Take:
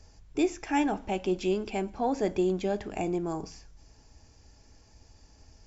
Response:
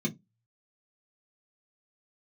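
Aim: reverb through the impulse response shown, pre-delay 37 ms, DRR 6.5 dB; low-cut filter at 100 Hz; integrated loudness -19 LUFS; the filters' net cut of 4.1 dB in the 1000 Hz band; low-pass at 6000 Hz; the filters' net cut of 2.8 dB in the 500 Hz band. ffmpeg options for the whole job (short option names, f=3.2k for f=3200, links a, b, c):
-filter_complex "[0:a]highpass=100,lowpass=6k,equalizer=f=500:t=o:g=-3.5,equalizer=f=1k:t=o:g=-4,asplit=2[a][b];[1:a]atrim=start_sample=2205,adelay=37[c];[b][c]afir=irnorm=-1:irlink=0,volume=-11dB[d];[a][d]amix=inputs=2:normalize=0,volume=7dB"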